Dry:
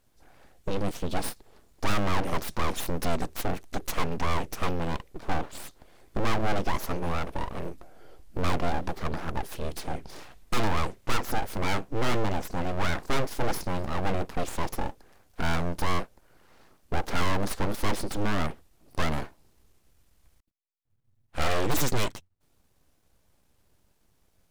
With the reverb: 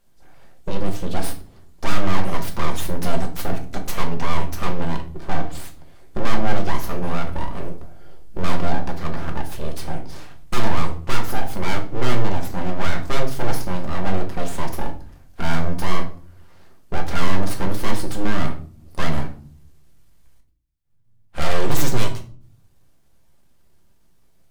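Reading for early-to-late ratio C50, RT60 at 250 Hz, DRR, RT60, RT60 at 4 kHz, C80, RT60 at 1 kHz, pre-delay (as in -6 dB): 11.5 dB, 0.85 s, 2.5 dB, 0.45 s, 0.35 s, 16.5 dB, 0.40 s, 5 ms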